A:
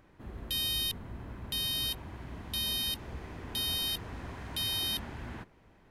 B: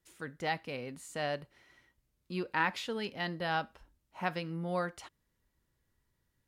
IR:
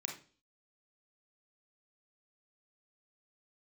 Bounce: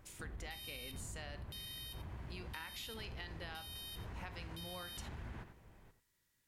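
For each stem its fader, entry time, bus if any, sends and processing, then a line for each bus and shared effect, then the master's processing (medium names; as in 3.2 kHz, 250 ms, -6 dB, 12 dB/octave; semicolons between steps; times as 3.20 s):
-3.5 dB, 0.00 s, no send, echo send -12 dB, bass shelf 170 Hz +6.5 dB; peak limiter -31.5 dBFS, peak gain reduction 12.5 dB; peaking EQ 260 Hz -4.5 dB 0.61 oct
-2.5 dB, 0.00 s, send -6 dB, no echo send, tilt shelf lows -5.5 dB, about 1.4 kHz; compression 2:1, threshold -45 dBFS, peak gain reduction 11.5 dB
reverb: on, RT60 0.40 s, pre-delay 30 ms
echo: delay 89 ms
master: compression, threshold -43 dBFS, peak gain reduction 8.5 dB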